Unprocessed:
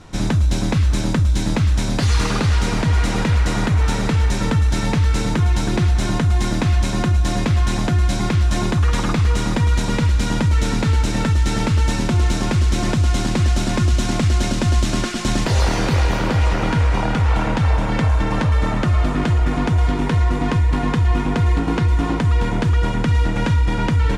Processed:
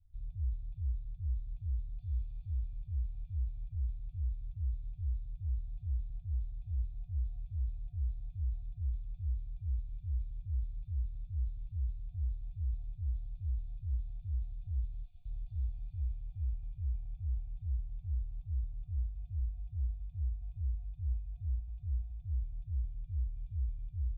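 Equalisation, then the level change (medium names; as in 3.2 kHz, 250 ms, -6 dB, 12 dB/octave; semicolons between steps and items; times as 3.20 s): cascade formant filter a; inverse Chebyshev band-stop 240–1800 Hz, stop band 60 dB; +11.5 dB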